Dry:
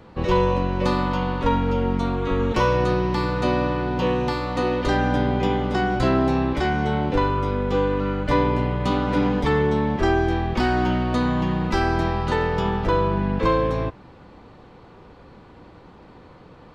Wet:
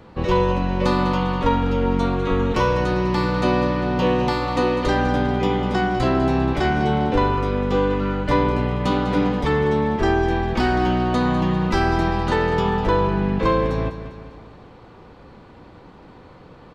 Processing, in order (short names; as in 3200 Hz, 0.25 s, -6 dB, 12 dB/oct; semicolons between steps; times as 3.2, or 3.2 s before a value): vocal rider 0.5 s; feedback echo 0.2 s, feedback 51%, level -12 dB; gain +1.5 dB